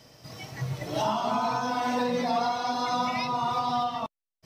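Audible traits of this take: noise floor -89 dBFS; spectral tilt -3.5 dB/oct

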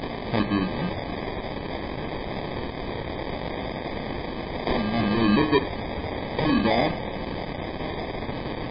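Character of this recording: a quantiser's noise floor 6-bit, dither triangular; phasing stages 2, 0.76 Hz, lowest notch 310–1600 Hz; aliases and images of a low sample rate 1400 Hz, jitter 0%; MP3

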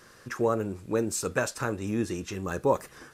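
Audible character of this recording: noise floor -55 dBFS; spectral tilt -5.0 dB/oct

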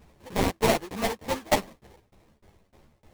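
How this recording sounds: aliases and images of a low sample rate 1400 Hz, jitter 20%; tremolo saw down 3.3 Hz, depth 100%; a shimmering, thickened sound

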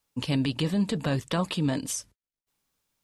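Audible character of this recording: noise floor -95 dBFS; spectral tilt -5.0 dB/oct

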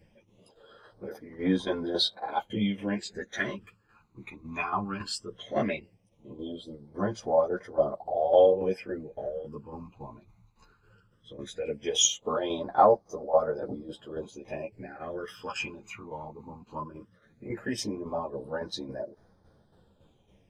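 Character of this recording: phasing stages 12, 0.17 Hz, lowest notch 540–2700 Hz; tremolo saw down 3.6 Hz, depth 60%; a shimmering, thickened sound

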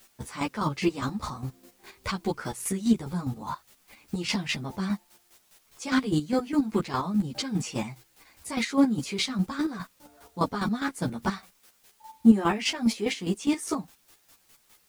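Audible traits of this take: a quantiser's noise floor 10-bit, dither triangular; chopped level 4.9 Hz, depth 65%, duty 30%; a shimmering, thickened sound

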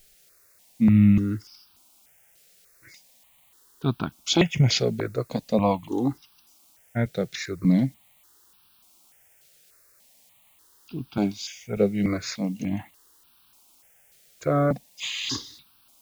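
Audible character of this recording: a quantiser's noise floor 10-bit, dither triangular; notches that jump at a steady rate 3.4 Hz 270–2000 Hz

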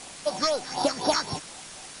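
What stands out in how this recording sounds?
a buzz of ramps at a fixed pitch in blocks of 8 samples; phasing stages 6, 4 Hz, lowest notch 740–2300 Hz; a quantiser's noise floor 8-bit, dither triangular; MP3

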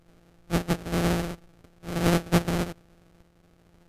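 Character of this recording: a buzz of ramps at a fixed pitch in blocks of 256 samples; tremolo saw up 0.62 Hz, depth 40%; aliases and images of a low sample rate 1000 Hz, jitter 20%; MP3

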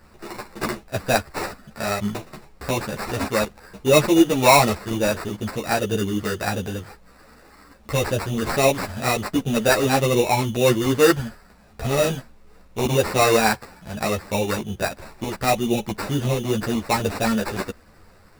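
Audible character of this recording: aliases and images of a low sample rate 3200 Hz, jitter 0%; a shimmering, thickened sound

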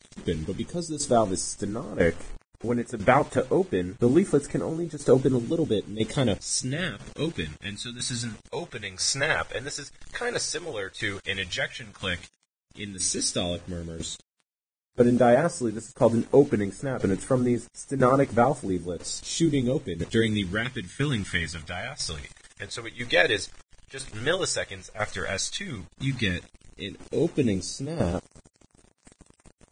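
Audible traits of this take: phasing stages 2, 0.074 Hz, lowest notch 210–4200 Hz; a quantiser's noise floor 8-bit, dither none; tremolo saw down 1 Hz, depth 75%; Vorbis

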